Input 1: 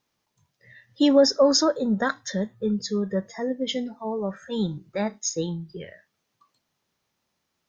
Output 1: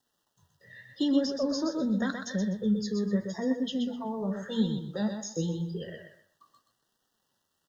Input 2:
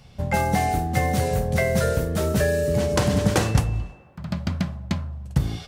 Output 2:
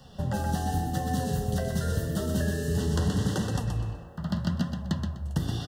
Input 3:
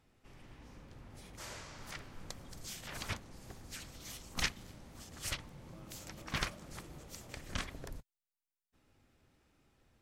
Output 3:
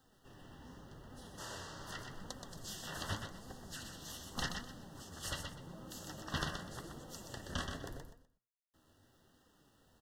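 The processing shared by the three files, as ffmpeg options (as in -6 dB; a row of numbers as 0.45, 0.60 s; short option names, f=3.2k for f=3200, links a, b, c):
-filter_complex "[0:a]lowshelf=f=70:g=-8,bandreject=f=117.7:t=h:w=4,bandreject=f=235.4:t=h:w=4,bandreject=f=353.1:t=h:w=4,bandreject=f=470.8:t=h:w=4,bandreject=f=588.5:t=h:w=4,bandreject=f=706.2:t=h:w=4,bandreject=f=823.9:t=h:w=4,bandreject=f=941.6:t=h:w=4,bandreject=f=1.0593k:t=h:w=4,bandreject=f=1.177k:t=h:w=4,bandreject=f=1.2947k:t=h:w=4,bandreject=f=1.4124k:t=h:w=4,bandreject=f=1.5301k:t=h:w=4,bandreject=f=1.6478k:t=h:w=4,bandreject=f=1.7655k:t=h:w=4,bandreject=f=1.8832k:t=h:w=4,bandreject=f=2.0009k:t=h:w=4,acrossover=split=250|2100[a][b][c];[a]acompressor=threshold=-28dB:ratio=4[d];[b]acompressor=threshold=-40dB:ratio=4[e];[c]acompressor=threshold=-40dB:ratio=4[f];[d][e][f]amix=inputs=3:normalize=0,acrusher=bits=11:mix=0:aa=0.000001,asuperstop=centerf=2300:order=20:qfactor=3.1,aecho=1:1:125|250|375:0.501|0.12|0.0289,flanger=delay=3.8:depth=8.8:regen=60:speed=0.85:shape=sinusoidal,highshelf=f=4.4k:g=-4.5,volume=6.5dB"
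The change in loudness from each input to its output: -6.0, -6.0, -1.0 LU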